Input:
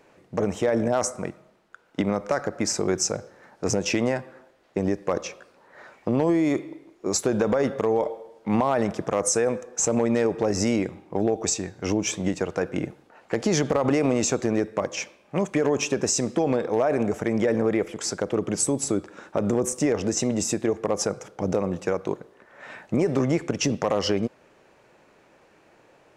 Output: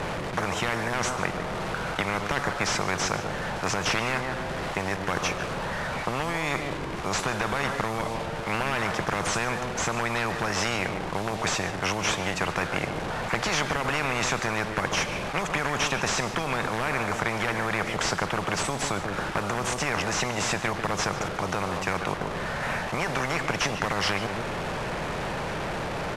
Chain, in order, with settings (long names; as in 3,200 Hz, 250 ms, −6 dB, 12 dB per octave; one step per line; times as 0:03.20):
linear delta modulator 64 kbit/s, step −38.5 dBFS
low-pass filter 1,500 Hz 6 dB per octave
low shelf with overshoot 220 Hz +10.5 dB, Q 3
slap from a distant wall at 25 metres, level −14 dB
every bin compressed towards the loudest bin 10 to 1
level −4 dB